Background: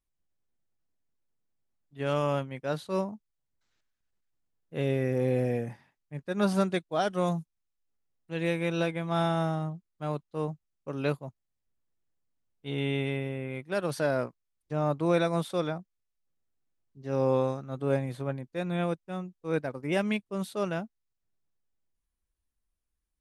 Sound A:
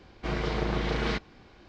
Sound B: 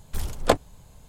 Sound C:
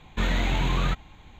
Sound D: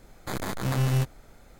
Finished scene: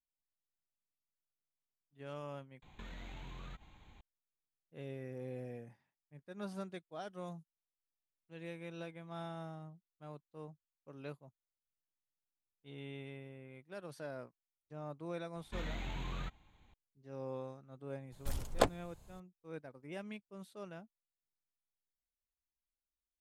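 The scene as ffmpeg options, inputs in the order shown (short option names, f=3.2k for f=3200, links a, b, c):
-filter_complex "[3:a]asplit=2[a][b];[0:a]volume=-17.5dB[c];[a]acompressor=threshold=-35dB:ratio=6:attack=3.2:release=140:knee=1:detection=peak[d];[c]asplit=2[e][f];[e]atrim=end=2.624[g];[d]atrim=end=1.39,asetpts=PTS-STARTPTS,volume=-11dB[h];[f]atrim=start=4.006[i];[b]atrim=end=1.39,asetpts=PTS-STARTPTS,volume=-17dB,afade=t=in:d=0.004:c=hsin,afade=t=out:st=1.386:d=0.004:c=hsin,adelay=15350[j];[2:a]atrim=end=1.08,asetpts=PTS-STARTPTS,volume=-9.5dB,afade=t=in:d=0.004:c=hsin,afade=t=out:st=1.076:d=0.004:c=hsin,adelay=799092S[k];[g][h]acrossfade=d=0.004:c1=hsin:c2=hsin[l];[l][i]acrossfade=d=0.004:c1=hsin:c2=hsin[m];[m][j][k]amix=inputs=3:normalize=0"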